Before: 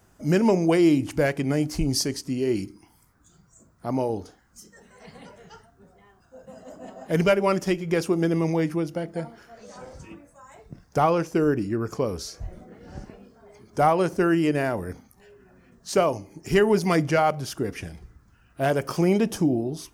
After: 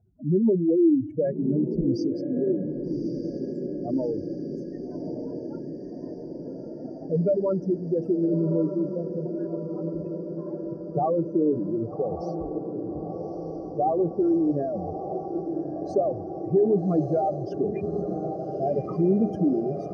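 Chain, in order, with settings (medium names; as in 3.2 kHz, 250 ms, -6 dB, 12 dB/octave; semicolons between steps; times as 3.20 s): spectral contrast enhancement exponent 3.3; band-pass filter 270 Hz, Q 0.54; echo that smears into a reverb 1193 ms, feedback 72%, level -7.5 dB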